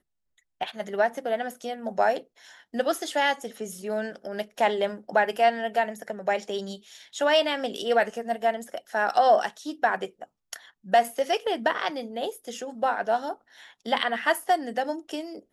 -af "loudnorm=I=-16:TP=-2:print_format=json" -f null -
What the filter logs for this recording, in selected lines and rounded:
"input_i" : "-26.9",
"input_tp" : "-8.4",
"input_lra" : "2.8",
"input_thresh" : "-37.4",